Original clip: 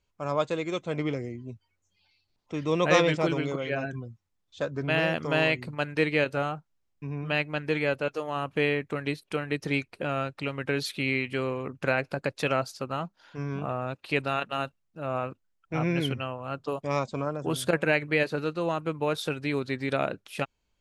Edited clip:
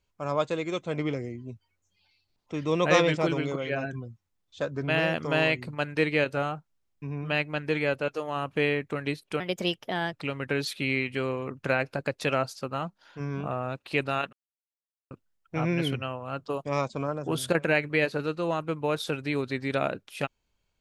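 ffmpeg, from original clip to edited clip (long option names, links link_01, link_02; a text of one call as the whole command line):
ffmpeg -i in.wav -filter_complex "[0:a]asplit=5[link_01][link_02][link_03][link_04][link_05];[link_01]atrim=end=9.404[link_06];[link_02]atrim=start=9.4:end=10.31,asetpts=PTS-STARTPTS,asetrate=55125,aresample=44100[link_07];[link_03]atrim=start=10.306:end=14.51,asetpts=PTS-STARTPTS,afade=type=out:start_time=4.2:duration=0.004:curve=hsin[link_08];[link_04]atrim=start=14.51:end=15.29,asetpts=PTS-STARTPTS,volume=0[link_09];[link_05]atrim=start=15.29,asetpts=PTS-STARTPTS,afade=type=in:duration=0.004:curve=hsin[link_10];[link_06][link_07]acrossfade=duration=0.004:curve1=hsin:curve2=hsin[link_11];[link_08][link_09][link_10]concat=n=3:v=0:a=1[link_12];[link_11][link_12]acrossfade=duration=0.004:curve1=hsin:curve2=hsin" out.wav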